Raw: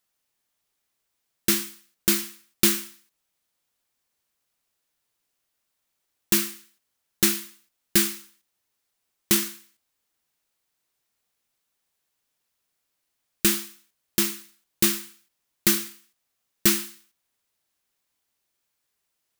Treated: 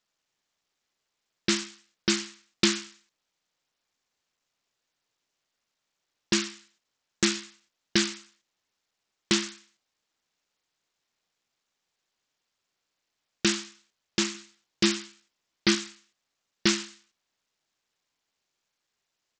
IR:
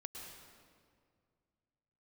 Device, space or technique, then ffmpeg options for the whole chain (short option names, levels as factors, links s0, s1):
Bluetooth headset: -filter_complex "[0:a]asettb=1/sr,asplit=3[s0][s1][s2];[s0]atrim=end=14.334[s3];[s1]atrim=start=14.33:end=15.75,asetpts=PTS-STARTPTS,afade=t=in:d=0.004:c=qsin,afade=t=out:st=1.416:d=0.004:c=qsin,asplit=2[s4][s5];[s5]adelay=15,volume=0.447[s6];[s4][s6]amix=inputs=2:normalize=0,atrim=end_sample=62622[s7];[s2]atrim=start=15.746[s8];[s3][s7]acrossfade=d=0.004:c1=hsin:c2=qsin[s9];[s9][s8]acrossfade=d=0.004:c1=qsin:c2=hsin,highpass=f=110:p=1,aresample=16000,aresample=44100" -ar 44100 -c:a sbc -b:a 64k